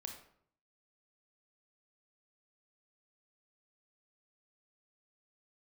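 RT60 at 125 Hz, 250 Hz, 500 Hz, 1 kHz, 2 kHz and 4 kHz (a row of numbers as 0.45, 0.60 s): 0.80, 0.70, 0.65, 0.60, 0.50, 0.40 s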